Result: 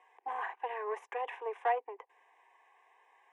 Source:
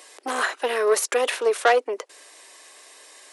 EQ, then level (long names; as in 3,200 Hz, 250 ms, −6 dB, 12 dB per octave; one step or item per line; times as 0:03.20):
four-pole ladder band-pass 930 Hz, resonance 40%
phaser with its sweep stopped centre 900 Hz, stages 8
+2.0 dB